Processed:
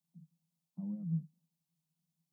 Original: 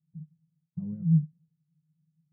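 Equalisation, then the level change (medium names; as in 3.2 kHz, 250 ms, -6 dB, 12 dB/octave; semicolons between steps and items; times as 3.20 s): Bessel high-pass 330 Hz, order 8; static phaser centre 430 Hz, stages 6; +6.0 dB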